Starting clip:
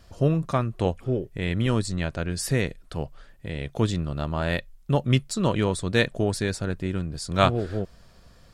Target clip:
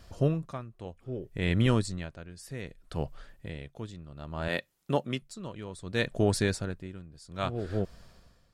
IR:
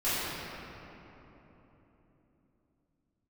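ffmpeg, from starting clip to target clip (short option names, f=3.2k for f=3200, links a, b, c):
-filter_complex "[0:a]asettb=1/sr,asplit=3[a][b][c];[a]atrim=end=4.484[d];[b]atrim=start=4.48:end=5.22,asetpts=PTS-STARTPTS,afade=t=in:d=0.004:c=qsin,afade=t=out:st=0.736:d=0.004:c=qsin,highpass=210[e];[c]atrim=start=5.216[f];[d][e]acrossfade=d=0.004:c1=hsin:c2=qsin[g];[g][f]acrossfade=d=0.004:c1=qsin:c2=hsin,aeval=exprs='val(0)*pow(10,-18*(0.5-0.5*cos(2*PI*0.63*n/s))/20)':c=same"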